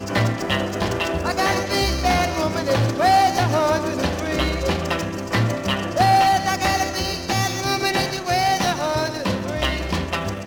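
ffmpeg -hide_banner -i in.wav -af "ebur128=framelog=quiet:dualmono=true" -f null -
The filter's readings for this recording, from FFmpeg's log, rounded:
Integrated loudness:
  I:         -17.7 LUFS
  Threshold: -27.7 LUFS
Loudness range:
  LRA:         1.9 LU
  Threshold: -37.3 LUFS
  LRA low:   -18.5 LUFS
  LRA high:  -16.6 LUFS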